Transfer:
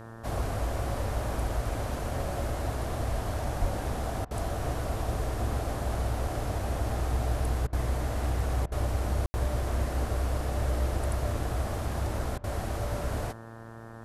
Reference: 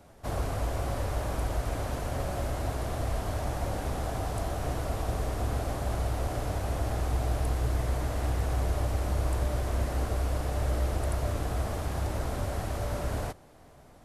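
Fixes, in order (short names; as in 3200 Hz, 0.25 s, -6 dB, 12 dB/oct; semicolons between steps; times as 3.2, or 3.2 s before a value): de-hum 113.6 Hz, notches 16; 3.6–3.72 HPF 140 Hz 24 dB/oct; room tone fill 9.26–9.34; interpolate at 4.25/7.67/8.66/12.38, 57 ms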